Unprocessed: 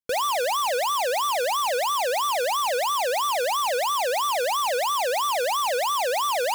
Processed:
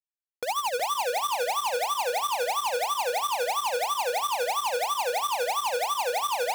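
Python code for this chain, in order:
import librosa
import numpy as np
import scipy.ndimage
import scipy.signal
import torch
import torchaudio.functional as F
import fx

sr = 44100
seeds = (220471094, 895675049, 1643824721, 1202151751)

p1 = fx.fade_in_head(x, sr, length_s=1.9)
p2 = fx.schmitt(p1, sr, flips_db=-37.0)
p3 = p2 * (1.0 - 0.71 / 2.0 + 0.71 / 2.0 * np.cos(2.0 * np.pi * 12.0 * (np.arange(len(p2)) / sr)))
y = p3 + fx.echo_feedback(p3, sr, ms=369, feedback_pct=30, wet_db=-8.0, dry=0)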